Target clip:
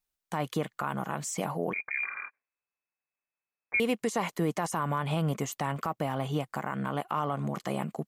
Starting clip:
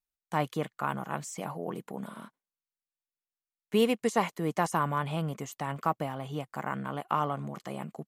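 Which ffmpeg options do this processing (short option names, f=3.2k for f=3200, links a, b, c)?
-filter_complex "[0:a]alimiter=level_in=1dB:limit=-24dB:level=0:latency=1:release=127,volume=-1dB,asettb=1/sr,asplit=3[a][b][c];[a]atrim=end=1.734[d];[b]atrim=start=1.73:end=3.8,asetpts=PTS-STARTPTS,afade=t=in:d=0.004:c=qsin,afade=t=out:st=2.066:d=0.004:c=qsin,lowpass=f=2.2k:t=q:w=0.5098,lowpass=f=2.2k:t=q:w=0.6013,lowpass=f=2.2k:t=q:w=0.9,lowpass=f=2.2k:t=q:w=2.563,afreqshift=-2600[e];[c]atrim=start=3.796[f];[d][e]acrossfade=d=0.004:c1=hsin:c2=qsin[g];[g][f]acrossfade=d=0.004:c1=qsin:c2=hsin,volume=6dB"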